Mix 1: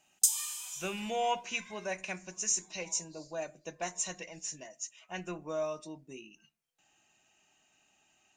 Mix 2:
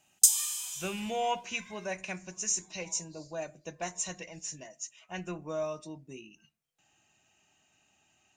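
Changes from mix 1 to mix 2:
background +5.0 dB; master: add bell 97 Hz +8 dB 1.6 oct

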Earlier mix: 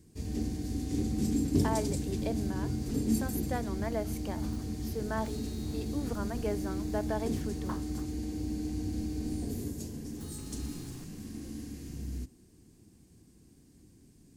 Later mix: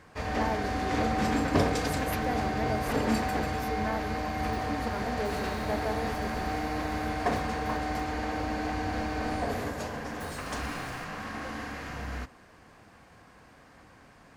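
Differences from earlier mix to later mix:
speech: entry -1.25 s; first sound: remove EQ curve 370 Hz 0 dB, 540 Hz -20 dB, 1300 Hz -29 dB, 8400 Hz +4 dB; second sound +3.5 dB

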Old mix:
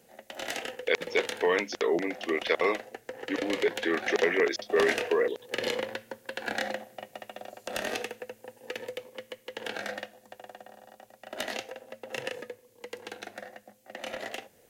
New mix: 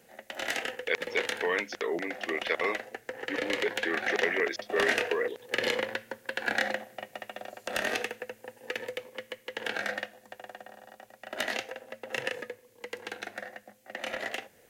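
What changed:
speech -5.5 dB; master: add bell 1800 Hz +5.5 dB 1.2 oct

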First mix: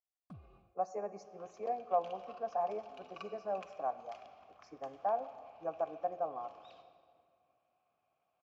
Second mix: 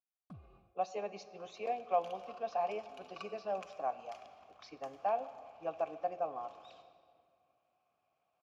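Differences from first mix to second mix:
speech: remove Butterworth band-stop 3300 Hz, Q 0.72; second sound: remove air absorption 78 m

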